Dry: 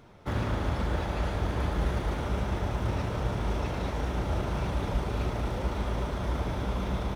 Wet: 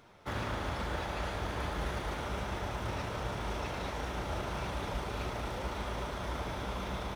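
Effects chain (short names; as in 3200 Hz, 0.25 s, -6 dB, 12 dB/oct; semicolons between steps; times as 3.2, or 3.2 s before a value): low shelf 480 Hz -9.5 dB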